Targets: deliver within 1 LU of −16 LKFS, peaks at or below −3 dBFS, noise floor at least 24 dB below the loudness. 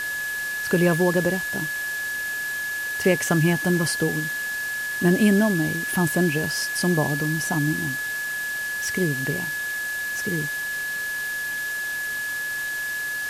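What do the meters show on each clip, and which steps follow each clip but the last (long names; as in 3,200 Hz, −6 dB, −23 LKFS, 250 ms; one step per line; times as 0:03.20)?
interfering tone 1,700 Hz; level of the tone −26 dBFS; background noise floor −29 dBFS; target noise floor −48 dBFS; integrated loudness −23.5 LKFS; sample peak −6.0 dBFS; target loudness −16.0 LKFS
→ notch filter 1,700 Hz, Q 30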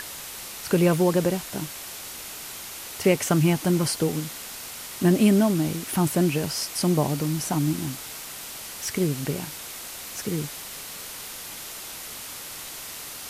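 interfering tone none found; background noise floor −38 dBFS; target noise floor −50 dBFS
→ noise reduction from a noise print 12 dB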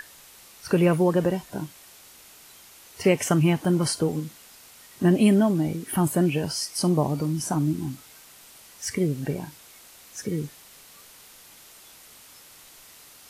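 background noise floor −50 dBFS; integrated loudness −24.5 LKFS; sample peak −7.0 dBFS; target loudness −16.0 LKFS
→ level +8.5 dB
brickwall limiter −3 dBFS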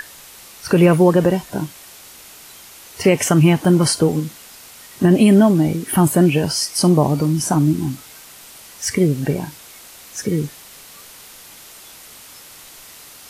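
integrated loudness −16.5 LKFS; sample peak −3.0 dBFS; background noise floor −42 dBFS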